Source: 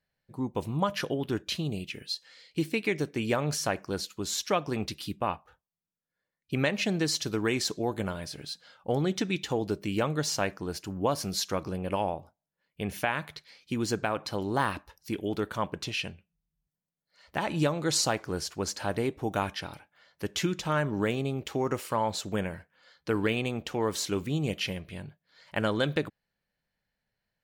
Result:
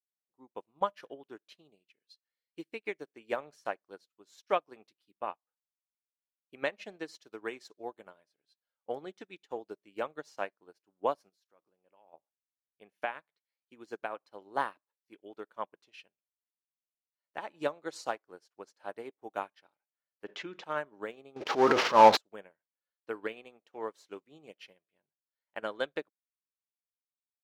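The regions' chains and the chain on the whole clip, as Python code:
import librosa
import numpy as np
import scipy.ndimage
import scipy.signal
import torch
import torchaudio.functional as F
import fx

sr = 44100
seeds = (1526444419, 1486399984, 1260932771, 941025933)

y = fx.chain(x, sr, fx.high_shelf(hz=8200.0, db=4.0),
    fx.level_steps(step_db=13), at=(11.29, 12.14))
y = fx.chain(y, sr, fx.lowpass(hz=3600.0, slope=12),
    fx.env_flatten(amount_pct=70), at=(20.24, 20.64))
y = fx.chain(y, sr, fx.cvsd(bps=32000),
    fx.transient(attack_db=-8, sustain_db=12),
    fx.leveller(passes=3), at=(21.36, 22.17))
y = scipy.signal.sosfilt(scipy.signal.butter(2, 430.0, 'highpass', fs=sr, output='sos'), y)
y = fx.high_shelf(y, sr, hz=2800.0, db=-10.5)
y = fx.upward_expand(y, sr, threshold_db=-50.0, expansion=2.5)
y = F.gain(torch.from_numpy(y), 8.0).numpy()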